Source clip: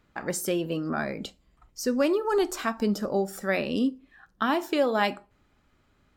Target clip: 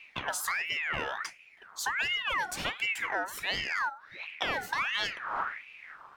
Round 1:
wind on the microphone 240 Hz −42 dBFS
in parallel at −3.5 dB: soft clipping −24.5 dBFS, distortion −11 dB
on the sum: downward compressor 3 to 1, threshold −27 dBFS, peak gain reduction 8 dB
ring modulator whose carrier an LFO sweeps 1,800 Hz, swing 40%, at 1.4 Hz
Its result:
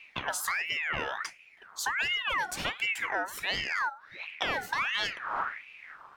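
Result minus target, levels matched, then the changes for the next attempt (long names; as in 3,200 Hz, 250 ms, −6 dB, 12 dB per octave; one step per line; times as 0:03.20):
soft clipping: distortion −7 dB
change: soft clipping −36 dBFS, distortion −4 dB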